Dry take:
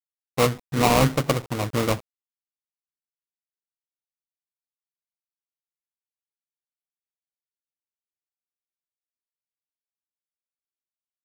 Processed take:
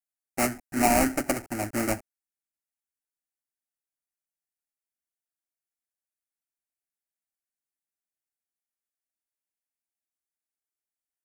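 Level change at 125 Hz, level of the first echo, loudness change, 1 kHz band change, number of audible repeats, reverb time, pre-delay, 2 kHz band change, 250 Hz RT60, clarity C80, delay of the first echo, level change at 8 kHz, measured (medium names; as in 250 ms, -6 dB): -13.5 dB, no echo, -3.5 dB, -3.0 dB, no echo, no reverb, no reverb, -2.0 dB, no reverb, no reverb, no echo, +1.5 dB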